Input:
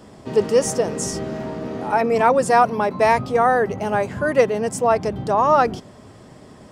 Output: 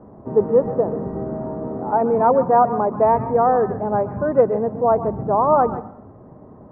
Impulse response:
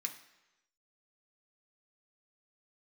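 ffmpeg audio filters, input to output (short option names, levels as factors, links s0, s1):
-filter_complex "[0:a]lowpass=f=1100:w=0.5412,lowpass=f=1100:w=1.3066,asplit=2[s0][s1];[1:a]atrim=start_sample=2205,afade=t=out:st=0.37:d=0.01,atrim=end_sample=16758,adelay=131[s2];[s1][s2]afir=irnorm=-1:irlink=0,volume=0.355[s3];[s0][s3]amix=inputs=2:normalize=0,volume=1.12"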